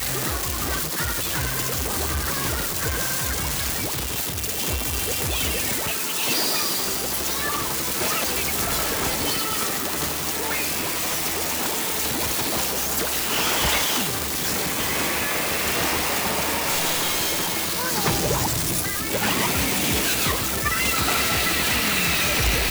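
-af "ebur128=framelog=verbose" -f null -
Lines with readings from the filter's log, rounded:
Integrated loudness:
  I:         -21.6 LUFS
  Threshold: -31.6 LUFS
Loudness range:
  LRA:         2.8 LU
  Threshold: -41.7 LUFS
  LRA low:   -23.2 LUFS
  LRA high:  -20.4 LUFS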